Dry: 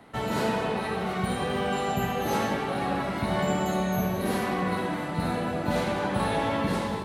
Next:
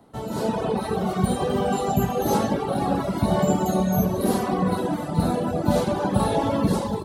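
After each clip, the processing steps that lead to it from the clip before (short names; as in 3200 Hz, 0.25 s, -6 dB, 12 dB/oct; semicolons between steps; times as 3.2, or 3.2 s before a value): reverb removal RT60 0.95 s; bell 2100 Hz -14 dB 1.4 oct; AGC gain up to 9 dB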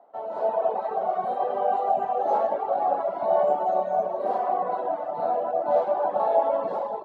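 ladder band-pass 740 Hz, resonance 65%; gain +8.5 dB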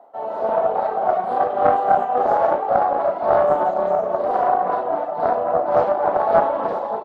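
doubler 37 ms -5.5 dB; tremolo 3.6 Hz, depth 37%; Doppler distortion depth 0.26 ms; gain +7 dB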